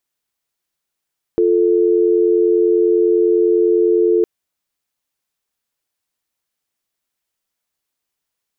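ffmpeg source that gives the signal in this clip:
-f lavfi -i "aevalsrc='0.211*(sin(2*PI*350*t)+sin(2*PI*440*t))':d=2.86:s=44100"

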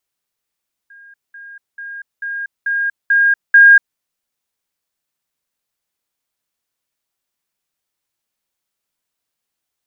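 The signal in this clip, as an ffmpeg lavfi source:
-f lavfi -i "aevalsrc='pow(10,(-39+6*floor(t/0.44))/20)*sin(2*PI*1620*t)*clip(min(mod(t,0.44),0.24-mod(t,0.44))/0.005,0,1)':d=3.08:s=44100"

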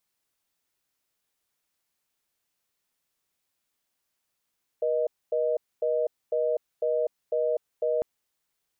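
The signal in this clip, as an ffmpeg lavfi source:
-f lavfi -i "aevalsrc='0.0531*(sin(2*PI*480*t)+sin(2*PI*620*t))*clip(min(mod(t,0.5),0.25-mod(t,0.5))/0.005,0,1)':d=3.2:s=44100"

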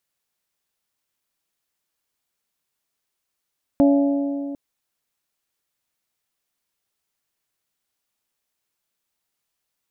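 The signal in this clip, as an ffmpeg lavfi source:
-f lavfi -i "aevalsrc='0.266*pow(10,-3*t/2.67)*sin(2*PI*282*t)+0.126*pow(10,-3*t/2.169)*sin(2*PI*564*t)+0.0596*pow(10,-3*t/2.053)*sin(2*PI*676.8*t)+0.0282*pow(10,-3*t/1.92)*sin(2*PI*846*t)':d=0.75:s=44100"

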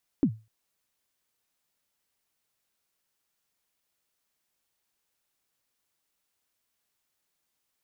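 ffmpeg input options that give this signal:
-f lavfi -i "aevalsrc='0.178*pow(10,-3*t/0.28)*sin(2*PI*(320*0.074/log(110/320)*(exp(log(110/320)*min(t,0.074)/0.074)-1)+110*max(t-0.074,0)))':d=0.25:s=44100"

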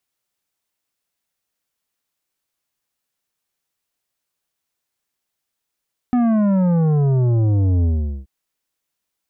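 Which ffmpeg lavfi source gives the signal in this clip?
-f lavfi -i "aevalsrc='0.188*clip((2.13-t)/0.42,0,1)*tanh(3.16*sin(2*PI*250*2.13/log(65/250)*(exp(log(65/250)*t/2.13)-1)))/tanh(3.16)':d=2.13:s=44100"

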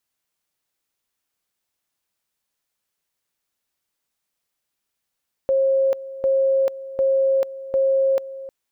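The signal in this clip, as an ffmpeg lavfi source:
-f lavfi -i "aevalsrc='pow(10,(-15-16*gte(mod(t,0.75),0.44))/20)*sin(2*PI*538*t)':d=3:s=44100"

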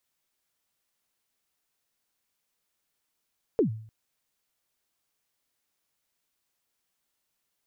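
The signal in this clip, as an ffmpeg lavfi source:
-f lavfi -i "aevalsrc='0.15*pow(10,-3*t/0.55)*sin(2*PI*(500*0.108/log(110/500)*(exp(log(110/500)*min(t,0.108)/0.108)-1)+110*max(t-0.108,0)))':d=0.3:s=44100"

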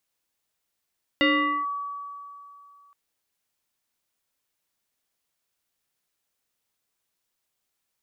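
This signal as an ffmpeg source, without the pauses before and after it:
-f lavfi -i "aevalsrc='0.158*pow(10,-3*t/2.71)*sin(2*PI*1140*t+2.2*clip(1-t/0.45,0,1)*sin(2*PI*0.74*1140*t))':d=1.72:s=44100"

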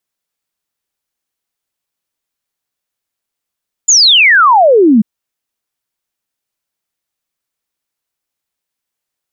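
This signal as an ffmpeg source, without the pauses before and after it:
-f lavfi -i "aevalsrc='0.668*clip(min(t,1.14-t)/0.01,0,1)*sin(2*PI*7300*1.14/log(200/7300)*(exp(log(200/7300)*t/1.14)-1))':d=1.14:s=44100"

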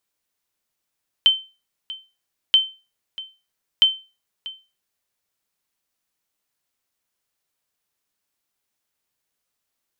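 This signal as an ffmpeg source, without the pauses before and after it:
-f lavfi -i "aevalsrc='0.473*(sin(2*PI*3090*mod(t,1.28))*exp(-6.91*mod(t,1.28)/0.3)+0.119*sin(2*PI*3090*max(mod(t,1.28)-0.64,0))*exp(-6.91*max(mod(t,1.28)-0.64,0)/0.3))':d=3.84:s=44100"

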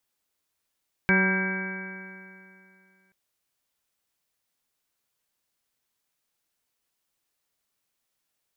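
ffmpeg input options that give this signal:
-f lavfi -i "aevalsrc='0.0841*pow(10,-3*t/2.53)*sin(2*PI*188.17*t)+0.0422*pow(10,-3*t/2.53)*sin(2*PI*377.35*t)+0.0211*pow(10,-3*t/2.53)*sin(2*PI*568.55*t)+0.015*pow(10,-3*t/2.53)*sin(2*PI*762.75*t)+0.0237*pow(10,-3*t/2.53)*sin(2*PI*960.92*t)+0.00891*pow(10,-3*t/2.53)*sin(2*PI*1163.97*t)+0.015*pow(10,-3*t/2.53)*sin(2*PI*1372.81*t)+0.0944*pow(10,-3*t/2.53)*sin(2*PI*1588.27*t)+0.0119*pow(10,-3*t/2.53)*sin(2*PI*1811.15*t)+0.0224*pow(10,-3*t/2.53)*sin(2*PI*2042.2*t)+0.0708*pow(10,-3*t/2.53)*sin(2*PI*2282.12*t)':d=2.03:s=44100"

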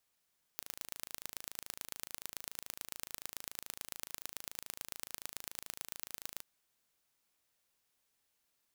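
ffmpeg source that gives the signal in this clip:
-f lavfi -i "aevalsrc='0.251*eq(mod(n,1633),0)*(0.5+0.5*eq(mod(n,4899),0))':d=5.84:s=44100"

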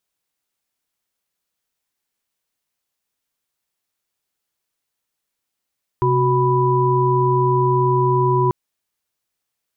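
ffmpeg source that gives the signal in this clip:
-f lavfi -i "aevalsrc='0.126*(sin(2*PI*130.81*t)+sin(2*PI*369.99*t)+sin(2*PI*987.77*t))':d=2.49:s=44100"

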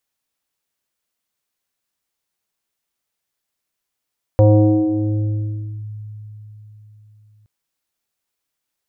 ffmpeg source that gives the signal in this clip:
-f lavfi -i "aevalsrc='0.501*pow(10,-3*t/4.18)*sin(2*PI*106*t+2.1*clip(1-t/1.47,0,1)*sin(2*PI*1.99*106*t))':d=3.07:s=44100"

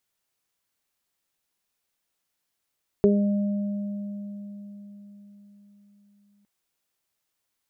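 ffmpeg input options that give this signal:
-f lavfi -i "aevalsrc='0.133*pow(10,-3*t/4.69)*sin(2*PI*203*t)+0.237*pow(10,-3*t/0.36)*sin(2*PI*406*t)+0.0376*pow(10,-3*t/3.22)*sin(2*PI*609*t)':d=3.41:s=44100"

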